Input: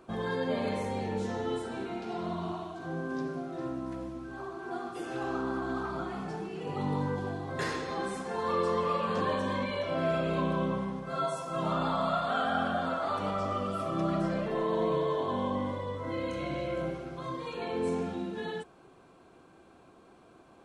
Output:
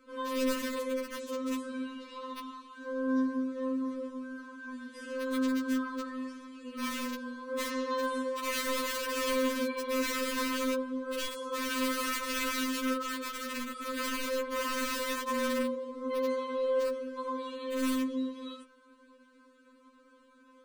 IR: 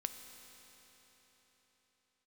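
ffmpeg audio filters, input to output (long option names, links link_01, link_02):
-af "aeval=exprs='(mod(15.8*val(0)+1,2)-1)/15.8':channel_layout=same,asuperstop=centerf=790:order=20:qfactor=2.8,afftfilt=real='re*3.46*eq(mod(b,12),0)':imag='im*3.46*eq(mod(b,12),0)':win_size=2048:overlap=0.75"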